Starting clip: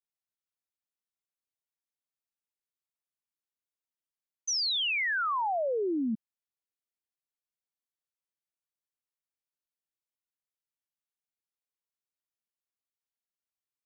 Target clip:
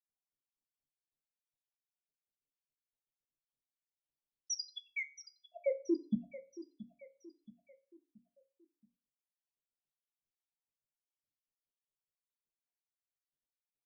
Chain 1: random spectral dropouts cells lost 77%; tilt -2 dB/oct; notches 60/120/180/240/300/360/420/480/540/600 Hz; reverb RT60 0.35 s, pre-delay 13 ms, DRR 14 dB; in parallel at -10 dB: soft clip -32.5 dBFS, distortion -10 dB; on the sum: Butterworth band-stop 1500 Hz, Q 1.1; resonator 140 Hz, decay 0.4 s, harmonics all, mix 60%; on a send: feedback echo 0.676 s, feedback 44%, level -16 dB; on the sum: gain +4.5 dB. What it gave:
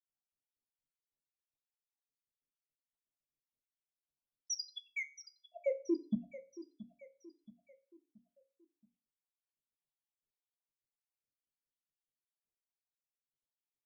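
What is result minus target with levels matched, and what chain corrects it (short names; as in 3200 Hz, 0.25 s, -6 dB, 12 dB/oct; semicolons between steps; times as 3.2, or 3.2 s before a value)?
soft clip: distortion +13 dB
random spectral dropouts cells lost 77%; tilt -2 dB/oct; notches 60/120/180/240/300/360/420/480/540/600 Hz; reverb RT60 0.35 s, pre-delay 13 ms, DRR 14 dB; in parallel at -10 dB: soft clip -22.5 dBFS, distortion -22 dB; on the sum: Butterworth band-stop 1500 Hz, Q 1.1; resonator 140 Hz, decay 0.4 s, harmonics all, mix 60%; on a send: feedback echo 0.676 s, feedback 44%, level -16 dB; on the sum: gain +4.5 dB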